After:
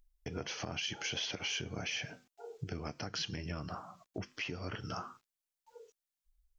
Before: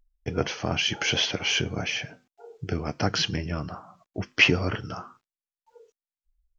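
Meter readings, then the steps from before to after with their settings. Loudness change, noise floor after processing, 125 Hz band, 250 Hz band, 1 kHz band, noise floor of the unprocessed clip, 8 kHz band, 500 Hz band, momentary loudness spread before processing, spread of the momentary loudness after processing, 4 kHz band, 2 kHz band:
-13.5 dB, under -85 dBFS, -12.5 dB, -13.0 dB, -10.5 dB, under -85 dBFS, n/a, -13.0 dB, 19 LU, 13 LU, -12.0 dB, -15.0 dB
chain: compressor 12:1, threshold -33 dBFS, peak gain reduction 20.5 dB; high shelf 3200 Hz +7 dB; limiter -25 dBFS, peak gain reduction 11.5 dB; gain -2 dB

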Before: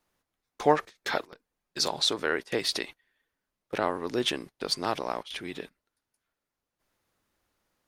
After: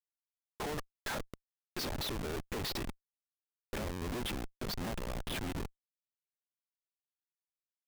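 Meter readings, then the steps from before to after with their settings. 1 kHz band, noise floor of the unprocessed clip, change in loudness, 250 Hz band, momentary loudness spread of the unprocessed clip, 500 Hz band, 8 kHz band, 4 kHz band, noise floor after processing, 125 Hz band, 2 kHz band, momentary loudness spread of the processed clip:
-12.5 dB, under -85 dBFS, -10.0 dB, -6.0 dB, 13 LU, -12.0 dB, -8.5 dB, -11.5 dB, under -85 dBFS, +2.0 dB, -9.5 dB, 8 LU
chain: LPF 5700 Hz 12 dB/oct; dynamic EQ 220 Hz, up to +7 dB, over -48 dBFS, Q 2.3; compressor 5:1, threshold -28 dBFS, peak gain reduction 13 dB; Schmitt trigger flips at -38.5 dBFS; gain +1 dB

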